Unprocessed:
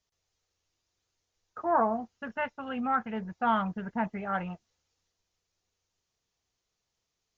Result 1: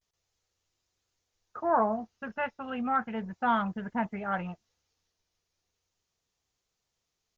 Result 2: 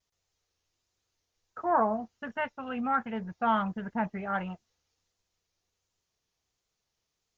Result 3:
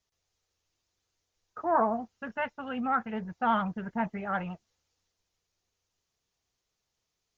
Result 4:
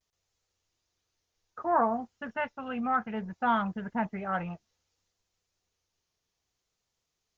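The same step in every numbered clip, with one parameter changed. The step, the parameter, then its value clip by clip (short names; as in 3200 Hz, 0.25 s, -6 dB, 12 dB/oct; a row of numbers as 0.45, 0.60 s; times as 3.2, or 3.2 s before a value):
vibrato, rate: 0.34, 1.4, 12, 0.62 Hz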